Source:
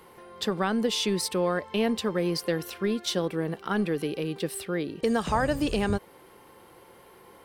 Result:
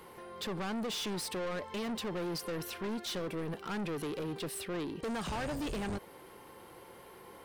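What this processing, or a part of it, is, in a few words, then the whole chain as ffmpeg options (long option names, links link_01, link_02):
saturation between pre-emphasis and de-emphasis: -af "highshelf=frequency=7400:gain=6,asoftclip=type=tanh:threshold=-34dB,highshelf=frequency=7400:gain=-6"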